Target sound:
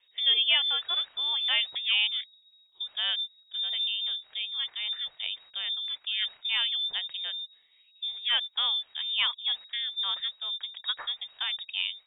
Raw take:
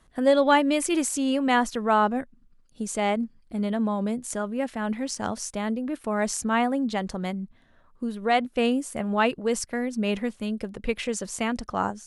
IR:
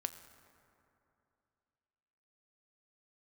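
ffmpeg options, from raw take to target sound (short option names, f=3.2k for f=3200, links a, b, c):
-af "lowpass=f=3.2k:t=q:w=0.5098,lowpass=f=3.2k:t=q:w=0.6013,lowpass=f=3.2k:t=q:w=0.9,lowpass=f=3.2k:t=q:w=2.563,afreqshift=-3800,asetnsamples=n=441:p=0,asendcmd='10.2 equalizer g -12.5',equalizer=f=220:t=o:w=1.1:g=-6,volume=-5dB"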